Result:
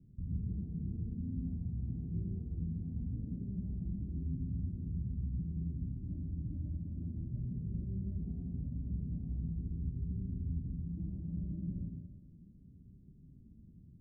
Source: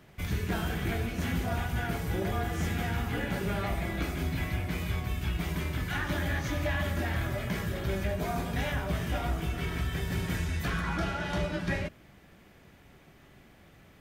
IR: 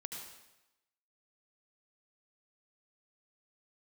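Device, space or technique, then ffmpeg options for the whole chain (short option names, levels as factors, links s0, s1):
club heard from the street: -filter_complex "[0:a]alimiter=level_in=1.88:limit=0.0631:level=0:latency=1:release=169,volume=0.531,lowpass=f=240:w=0.5412,lowpass=f=240:w=1.3066[s0];[1:a]atrim=start_sample=2205[s1];[s0][s1]afir=irnorm=-1:irlink=0,volume=1.58"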